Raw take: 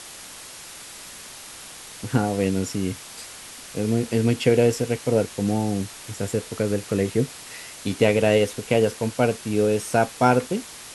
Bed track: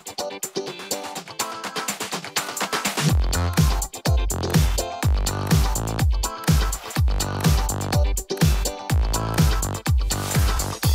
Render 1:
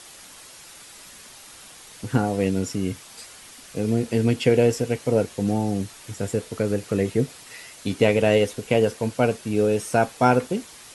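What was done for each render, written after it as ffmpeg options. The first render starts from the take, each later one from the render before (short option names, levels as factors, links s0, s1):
-af "afftdn=nr=6:nf=-41"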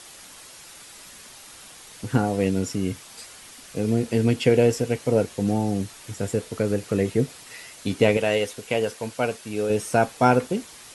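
-filter_complex "[0:a]asettb=1/sr,asplit=3[s0][s1][s2];[s0]atrim=end=8.174[s3];[s1]atrim=start=8.17:end=9.7,asetpts=PTS-STARTPTS,afade=t=in:d=0.004:c=qsin,afade=t=out:st=1.526:d=0.004:c=qsin,lowshelf=f=470:g=-9[s4];[s2]atrim=start=9.696[s5];[s3][s4]acrossfade=d=0.004:c1=hsin:c2=qsin[s6];[s6][s5]acrossfade=d=0.004:c1=qsin:c2=hsin"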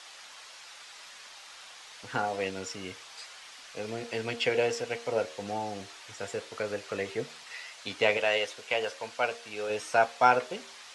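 -filter_complex "[0:a]acrossover=split=570 6500:gain=0.1 1 0.0794[s0][s1][s2];[s0][s1][s2]amix=inputs=3:normalize=0,bandreject=f=78.14:t=h:w=4,bandreject=f=156.28:t=h:w=4,bandreject=f=234.42:t=h:w=4,bandreject=f=312.56:t=h:w=4,bandreject=f=390.7:t=h:w=4,bandreject=f=468.84:t=h:w=4,bandreject=f=546.98:t=h:w=4,bandreject=f=625.12:t=h:w=4,bandreject=f=703.26:t=h:w=4"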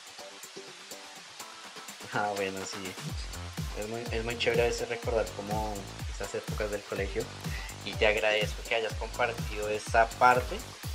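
-filter_complex "[1:a]volume=0.119[s0];[0:a][s0]amix=inputs=2:normalize=0"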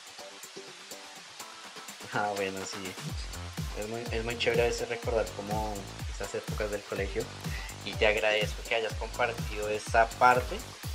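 -af anull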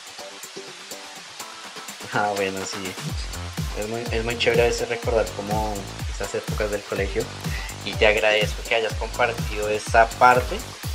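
-af "volume=2.51,alimiter=limit=0.708:level=0:latency=1"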